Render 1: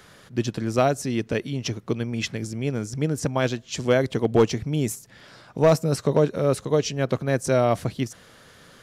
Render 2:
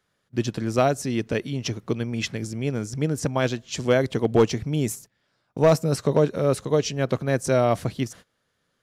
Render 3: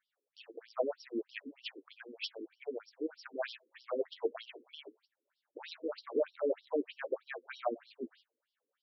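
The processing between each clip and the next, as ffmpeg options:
ffmpeg -i in.wav -af "agate=range=-23dB:threshold=-42dB:ratio=16:detection=peak" out.wav
ffmpeg -i in.wav -af "flanger=delay=8.6:depth=3.6:regen=34:speed=1.8:shape=sinusoidal,afftfilt=real='re*between(b*sr/1024,350*pow(4100/350,0.5+0.5*sin(2*PI*3.2*pts/sr))/1.41,350*pow(4100/350,0.5+0.5*sin(2*PI*3.2*pts/sr))*1.41)':imag='im*between(b*sr/1024,350*pow(4100/350,0.5+0.5*sin(2*PI*3.2*pts/sr))/1.41,350*pow(4100/350,0.5+0.5*sin(2*PI*3.2*pts/sr))*1.41)':win_size=1024:overlap=0.75,volume=-4dB" out.wav

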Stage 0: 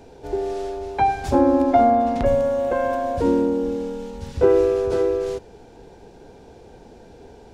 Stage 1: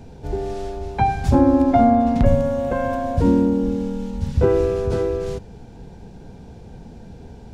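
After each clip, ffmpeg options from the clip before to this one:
ffmpeg -i in.wav -af "lowshelf=frequency=260:width_type=q:width=1.5:gain=9.5" out.wav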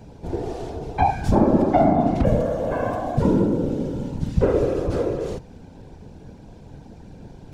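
ffmpeg -i in.wav -af "afftfilt=real='hypot(re,im)*cos(2*PI*random(0))':imag='hypot(re,im)*sin(2*PI*random(1))':win_size=512:overlap=0.75,volume=4dB" out.wav

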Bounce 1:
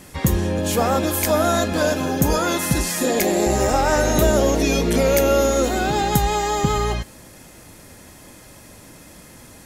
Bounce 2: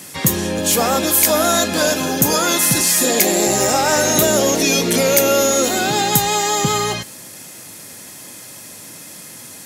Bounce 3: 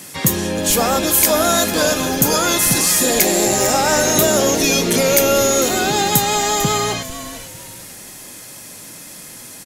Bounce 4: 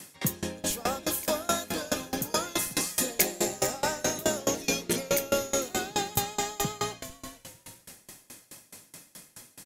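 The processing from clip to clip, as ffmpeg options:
ffmpeg -i in.wav -filter_complex "[0:a]highpass=frequency=110:width=0.5412,highpass=frequency=110:width=1.3066,highshelf=frequency=2500:gain=11,asplit=2[link_01][link_02];[link_02]acontrast=67,volume=-0.5dB[link_03];[link_01][link_03]amix=inputs=2:normalize=0,volume=-8dB" out.wav
ffmpeg -i in.wav -filter_complex "[0:a]asplit=4[link_01][link_02][link_03][link_04];[link_02]adelay=448,afreqshift=-150,volume=-13dB[link_05];[link_03]adelay=896,afreqshift=-300,volume=-23.5dB[link_06];[link_04]adelay=1344,afreqshift=-450,volume=-33.9dB[link_07];[link_01][link_05][link_06][link_07]amix=inputs=4:normalize=0" out.wav
ffmpeg -i in.wav -af "aeval=exprs='val(0)*pow(10,-25*if(lt(mod(4.7*n/s,1),2*abs(4.7)/1000),1-mod(4.7*n/s,1)/(2*abs(4.7)/1000),(mod(4.7*n/s,1)-2*abs(4.7)/1000)/(1-2*abs(4.7)/1000))/20)':channel_layout=same,volume=-6.5dB" out.wav

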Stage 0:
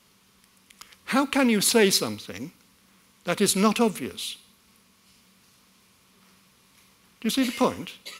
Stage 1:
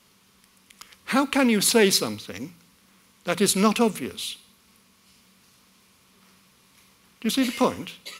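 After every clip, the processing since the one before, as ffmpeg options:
ffmpeg -i in.wav -af "bandreject=frequency=56.5:width_type=h:width=4,bandreject=frequency=113:width_type=h:width=4,bandreject=frequency=169.5:width_type=h:width=4,volume=1dB" out.wav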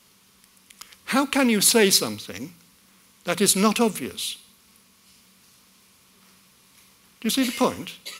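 ffmpeg -i in.wav -af "highshelf=frequency=4300:gain=5" out.wav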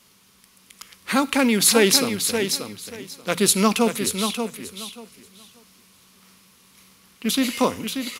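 ffmpeg -i in.wav -af "aecho=1:1:584|1168|1752:0.447|0.0849|0.0161,volume=1dB" out.wav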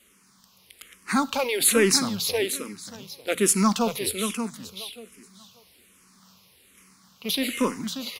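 ffmpeg -i in.wav -filter_complex "[0:a]asoftclip=type=tanh:threshold=-6.5dB,asplit=2[link_01][link_02];[link_02]afreqshift=-1.2[link_03];[link_01][link_03]amix=inputs=2:normalize=1" out.wav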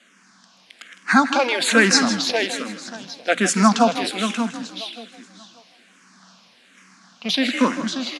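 ffmpeg -i in.wav -filter_complex "[0:a]highpass=frequency=170:width=0.5412,highpass=frequency=170:width=1.3066,equalizer=frequency=250:width_type=q:width=4:gain=3,equalizer=frequency=410:width_type=q:width=4:gain=-9,equalizer=frequency=700:width_type=q:width=4:gain=9,equalizer=frequency=1600:width_type=q:width=4:gain=10,lowpass=frequency=7100:width=0.5412,lowpass=frequency=7100:width=1.3066,asplit=4[link_01][link_02][link_03][link_04];[link_02]adelay=158,afreqshift=39,volume=-12dB[link_05];[link_03]adelay=316,afreqshift=78,volume=-21.9dB[link_06];[link_04]adelay=474,afreqshift=117,volume=-31.8dB[link_07];[link_01][link_05][link_06][link_07]amix=inputs=4:normalize=0,volume=5dB" out.wav

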